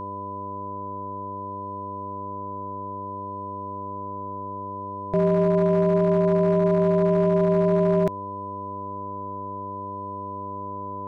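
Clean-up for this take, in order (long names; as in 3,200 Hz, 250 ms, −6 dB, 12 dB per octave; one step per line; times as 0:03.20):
clipped peaks rebuilt −14 dBFS
hum removal 99.4 Hz, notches 6
notch filter 1,000 Hz, Q 30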